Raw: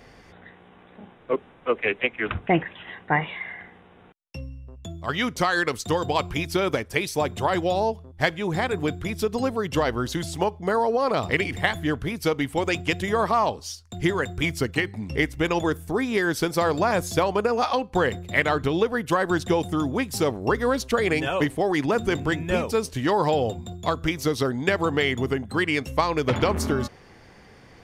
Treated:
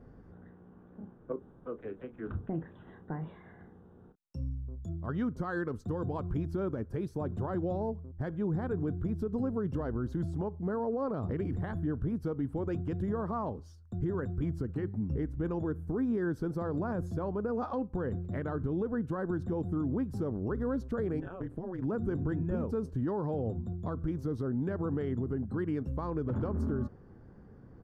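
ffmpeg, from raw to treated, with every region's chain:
ffmpeg -i in.wav -filter_complex "[0:a]asettb=1/sr,asplit=3[link_01][link_02][link_03];[link_01]atrim=end=1.324[link_04];[link_02]atrim=start=1.32:end=4.89,asetpts=PTS-STARTPTS,afade=type=in:duration=0.004:curve=qsin,afade=type=out:start_time=3.566:duration=0.004:curve=qsin,highshelf=frequency=3800:width_type=q:width=1.5:gain=13,acompressor=threshold=-31dB:ratio=2.5:attack=3.2:release=140:knee=1:detection=peak,asplit=2[link_05][link_06];[link_06]adelay=31,volume=-11dB[link_07];[link_05][link_07]amix=inputs=2:normalize=0,atrim=end_sample=157437[link_08];[link_03]atrim=start=4.886[link_09];[link_04][link_08]acrossfade=duration=0.004:curve1=hsin:curve2=qsin[link_10];[link_10][link_09]acrossfade=duration=0.004:curve1=qsin:curve2=hsin,asettb=1/sr,asplit=3[link_11][link_12][link_13];[link_11]atrim=end=21.204[link_14];[link_12]atrim=start=21.2:end=21.82,asetpts=PTS-STARTPTS,afade=type=in:duration=0.004:curve=qsin,afade=type=out:start_time=0.616:duration=0.004:curve=qsin,equalizer=frequency=1800:width=0.6:gain=5,acompressor=threshold=-28dB:ratio=3:attack=3.2:release=140:knee=1:detection=peak,tremolo=f=180:d=0.889[link_15];[link_13]atrim=start=21.816[link_16];[link_14][link_15]acrossfade=duration=0.004:curve1=hsin:curve2=qsin[link_17];[link_17][link_16]acrossfade=duration=0.004:curve1=qsin:curve2=hsin,firequalizer=gain_entry='entry(210,0);entry(710,-13);entry(1500,-12);entry(2100,-30)':delay=0.05:min_phase=1,alimiter=level_in=0.5dB:limit=-24dB:level=0:latency=1:release=64,volume=-0.5dB" out.wav

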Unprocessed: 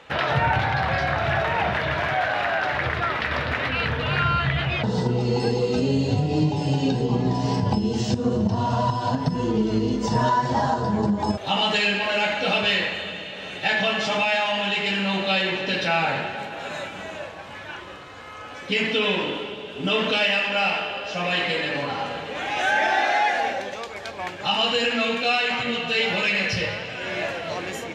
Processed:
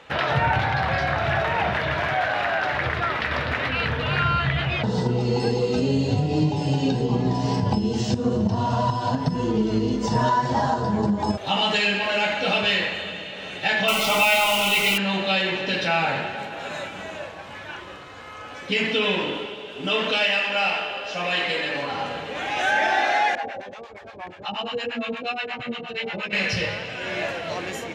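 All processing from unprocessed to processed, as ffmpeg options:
ffmpeg -i in.wav -filter_complex "[0:a]asettb=1/sr,asplit=3[link_01][link_02][link_03];[link_01]atrim=end=13.884[link_04];[link_02]atrim=start=13.88:end=14.98,asetpts=PTS-STARTPTS,afade=type=in:duration=0.004:curve=qsin,afade=type=out:start_time=1.096:duration=0.004:curve=qsin,equalizer=frequency=1800:width_type=o:width=2.1:gain=6,acrusher=bits=5:dc=4:mix=0:aa=0.000001,asuperstop=centerf=1700:order=20:qfactor=4.5[link_05];[link_03]atrim=start=14.976[link_06];[link_04][link_05]acrossfade=duration=0.004:curve1=hsin:curve2=qsin[link_07];[link_07][link_06]acrossfade=duration=0.004:curve1=qsin:curve2=hsin,asettb=1/sr,asplit=3[link_08][link_09][link_10];[link_08]atrim=end=19.464[link_11];[link_09]atrim=start=19.46:end=21.94,asetpts=PTS-STARTPTS,afade=type=in:duration=0.004:curve=qsin,afade=type=out:start_time=2.476:duration=0.004:curve=qsin,highpass=74,equalizer=frequency=140:width_type=o:width=2.1:gain=-5.5[link_12];[link_10]atrim=start=21.936[link_13];[link_11][link_12]acrossfade=duration=0.004:curve1=hsin:curve2=qsin[link_14];[link_14][link_13]acrossfade=duration=0.004:curve1=qsin:curve2=hsin,asettb=1/sr,asplit=3[link_15][link_16][link_17];[link_15]atrim=end=23.354[link_18];[link_16]atrim=start=23.35:end=26.33,asetpts=PTS-STARTPTS,afade=type=in:duration=0.004:curve=qsin,afade=type=out:start_time=2.976:duration=0.004:curve=qsin,lowpass=frequency=2100:poles=1,acrossover=split=650[link_19][link_20];[link_19]aeval=exprs='val(0)*(1-1/2+1/2*cos(2*PI*8.5*n/s))':channel_layout=same[link_21];[link_20]aeval=exprs='val(0)*(1-1/2-1/2*cos(2*PI*8.5*n/s))':channel_layout=same[link_22];[link_21][link_22]amix=inputs=2:normalize=0[link_23];[link_17]atrim=start=26.326[link_24];[link_18][link_23]acrossfade=duration=0.004:curve1=hsin:curve2=qsin[link_25];[link_25][link_24]acrossfade=duration=0.004:curve1=qsin:curve2=hsin" out.wav

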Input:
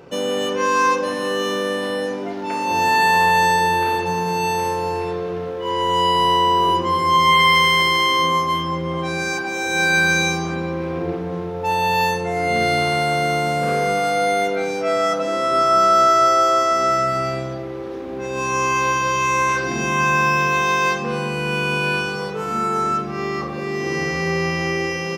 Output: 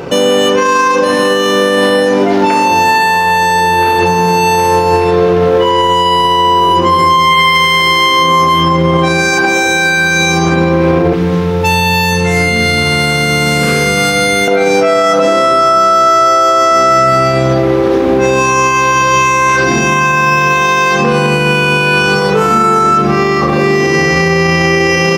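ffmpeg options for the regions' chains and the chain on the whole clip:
ffmpeg -i in.wav -filter_complex "[0:a]asettb=1/sr,asplit=3[link_01][link_02][link_03];[link_01]atrim=end=11.134[link_04];[link_02]atrim=start=11.13:end=14.48,asetpts=PTS-STARTPTS,afade=type=in:duration=0.004:curve=qsin,afade=type=out:start_time=3.346:duration=0.004:curve=qsin,equalizer=frequency=660:width_type=o:width=0.32:gain=-11,bandreject=frequency=50:width_type=h:width=6,bandreject=frequency=100:width_type=h:width=6,bandreject=frequency=150:width_type=h:width=6,bandreject=frequency=200:width_type=h:width=6,bandreject=frequency=250:width_type=h:width=6,bandreject=frequency=300:width_type=h:width=6,bandreject=frequency=350:width_type=h:width=6,acrossover=split=250|2000[link_05][link_06][link_07];[link_05]acompressor=threshold=-32dB:ratio=4[link_08];[link_06]acompressor=threshold=-36dB:ratio=4[link_09];[link_07]acompressor=threshold=-33dB:ratio=4[link_10];[link_08][link_09][link_10]amix=inputs=3:normalize=0[link_11];[link_03]atrim=start=14.476[link_12];[link_04][link_11]acrossfade=duration=0.004:curve1=hsin:curve2=qsin[link_13];[link_13][link_12]acrossfade=duration=0.004:curve1=qsin:curve2=hsin,acompressor=threshold=-22dB:ratio=6,alimiter=level_in=21dB:limit=-1dB:release=50:level=0:latency=1,volume=-1dB" out.wav

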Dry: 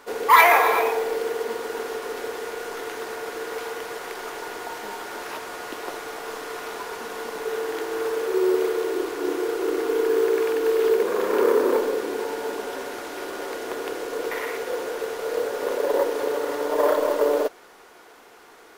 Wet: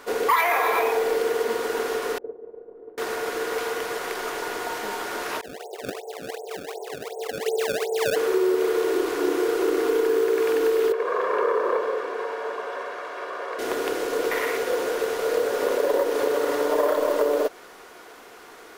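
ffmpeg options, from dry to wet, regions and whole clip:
ffmpeg -i in.wav -filter_complex "[0:a]asettb=1/sr,asplit=3[link_01][link_02][link_03];[link_01]atrim=end=2.184[link_04];[link_02]atrim=start=2.18:end=2.98,asetpts=PTS-STARTPTS,afade=type=in:duration=0.004:curve=qsin,afade=type=out:start_time=0.796:duration=0.004:curve=qsin,agate=range=-33dB:threshold=-22dB:ratio=3:release=100:detection=peak,lowpass=frequency=460:width_type=q:width=1.7[link_05];[link_03]atrim=start=2.976[link_06];[link_04][link_05]acrossfade=duration=0.004:curve1=hsin:curve2=qsin[link_07];[link_07][link_06]acrossfade=duration=0.004:curve1=qsin:curve2=hsin,asettb=1/sr,asplit=3[link_08][link_09][link_10];[link_08]atrim=end=5.414[link_11];[link_09]atrim=start=5.41:end=8.16,asetpts=PTS-STARTPTS,afade=type=in:duration=0.004:curve=qsin,afade=type=out:start_time=2.746:duration=0.004:curve=qsin,agate=range=-33dB:threshold=-32dB:ratio=3:release=100:detection=peak,asuperpass=centerf=570:order=20:qfactor=1.1,acrusher=samples=25:mix=1:aa=0.000001:lfo=1:lforange=40:lforate=2.7[link_12];[link_10]atrim=start=8.156[link_13];[link_11][link_12]acrossfade=duration=0.004:curve1=hsin:curve2=qsin[link_14];[link_14][link_13]acrossfade=duration=0.004:curve1=qsin:curve2=hsin,asettb=1/sr,asplit=3[link_15][link_16][link_17];[link_15]atrim=end=10.924[link_18];[link_16]atrim=start=10.92:end=13.59,asetpts=PTS-STARTPTS,afade=type=in:duration=0.004:curve=qsin,afade=type=out:start_time=2.666:duration=0.004:curve=qsin,bandpass=frequency=1100:width_type=q:width=1.1,aecho=1:1:1.8:0.49,atrim=end_sample=117747[link_19];[link_17]atrim=start=13.586[link_20];[link_18][link_19]acrossfade=duration=0.004:curve1=hsin:curve2=qsin[link_21];[link_21][link_20]acrossfade=duration=0.004:curve1=qsin:curve2=hsin,bandreject=frequency=860:width=14,acompressor=threshold=-22dB:ratio=6,volume=4dB" out.wav

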